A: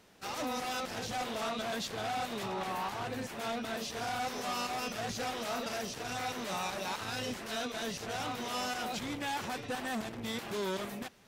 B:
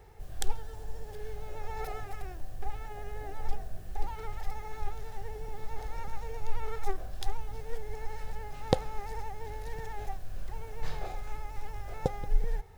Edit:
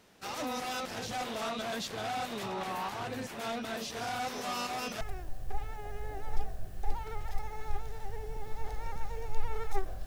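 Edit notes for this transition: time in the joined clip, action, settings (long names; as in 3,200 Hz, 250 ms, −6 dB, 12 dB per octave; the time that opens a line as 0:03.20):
A
0:05.01: continue with B from 0:02.13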